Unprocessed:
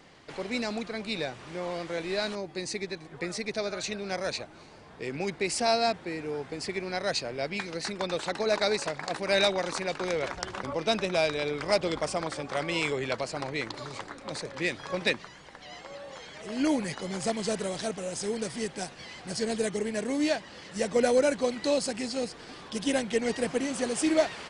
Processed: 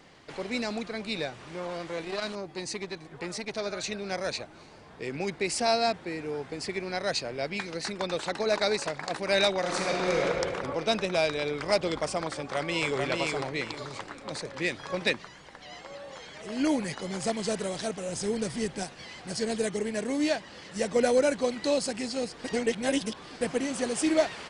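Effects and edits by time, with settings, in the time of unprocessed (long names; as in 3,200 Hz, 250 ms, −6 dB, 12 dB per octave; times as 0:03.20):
0:01.27–0:03.66: saturating transformer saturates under 1,000 Hz
0:09.59–0:10.25: thrown reverb, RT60 2.3 s, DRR −2.5 dB
0:12.38–0:12.97: delay throw 440 ms, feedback 25%, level −2.5 dB
0:18.09–0:18.83: low-shelf EQ 190 Hz +8 dB
0:22.44–0:23.41: reverse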